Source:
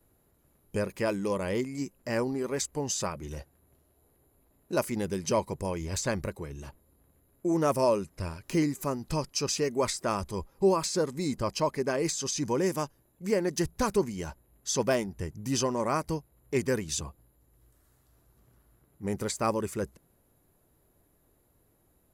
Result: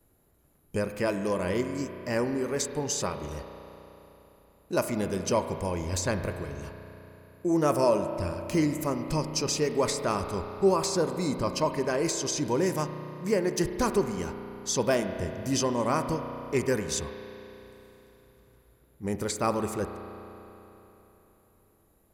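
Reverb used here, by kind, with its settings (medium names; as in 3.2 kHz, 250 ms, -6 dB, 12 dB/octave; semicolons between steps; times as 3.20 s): spring tank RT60 3.5 s, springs 33 ms, chirp 20 ms, DRR 7 dB; trim +1 dB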